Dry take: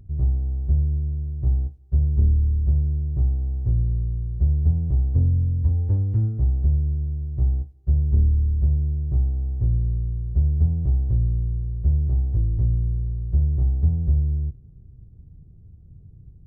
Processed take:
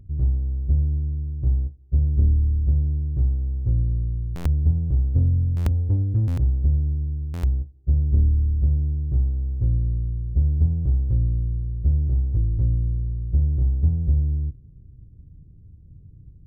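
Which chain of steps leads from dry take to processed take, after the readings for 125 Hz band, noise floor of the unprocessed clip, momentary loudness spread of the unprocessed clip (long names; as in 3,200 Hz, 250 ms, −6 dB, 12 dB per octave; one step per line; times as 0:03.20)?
0.0 dB, −47 dBFS, 6 LU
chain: adaptive Wiener filter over 41 samples
hollow resonant body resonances 290/530 Hz, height 6 dB, ringing for 90 ms
buffer that repeats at 0:04.35/0:05.56/0:06.27/0:07.33, samples 512, times 8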